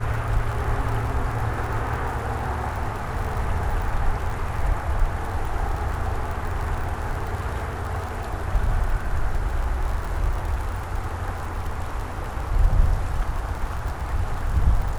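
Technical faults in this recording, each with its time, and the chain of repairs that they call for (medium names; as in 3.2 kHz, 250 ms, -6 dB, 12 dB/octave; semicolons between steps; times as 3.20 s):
crackle 51 per s -29 dBFS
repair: de-click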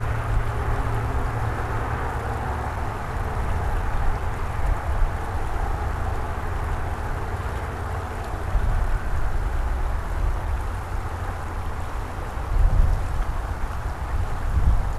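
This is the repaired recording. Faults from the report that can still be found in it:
nothing left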